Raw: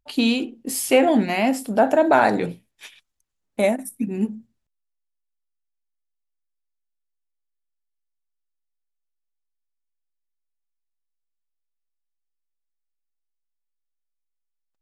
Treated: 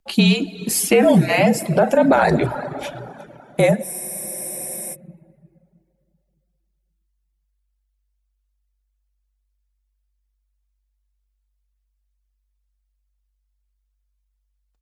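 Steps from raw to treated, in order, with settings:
single-tap delay 359 ms −21 dB
frequency shifter −49 Hz
dense smooth reverb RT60 2.7 s, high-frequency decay 0.7×, DRR 7.5 dB
reverb reduction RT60 0.81 s
brickwall limiter −12 dBFS, peak gain reduction 8.5 dB
frozen spectrum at 0:03.85, 1.09 s
level +6.5 dB

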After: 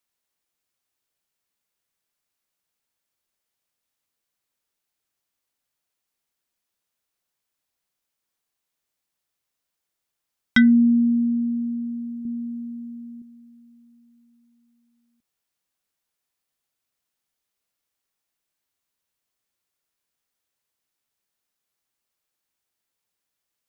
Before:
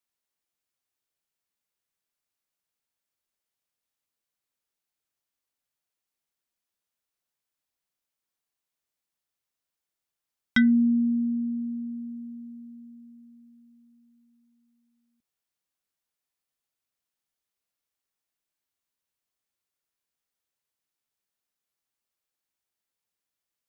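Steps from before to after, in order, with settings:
0:12.25–0:13.22: low-shelf EQ 320 Hz +9 dB
level +5 dB

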